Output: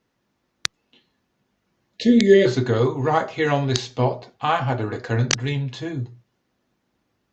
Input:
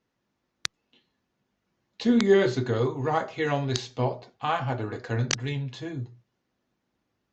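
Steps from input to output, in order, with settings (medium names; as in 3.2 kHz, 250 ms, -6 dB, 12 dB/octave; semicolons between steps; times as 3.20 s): time-frequency box 1.97–2.46 s, 680–1700 Hz -22 dB; trim +6 dB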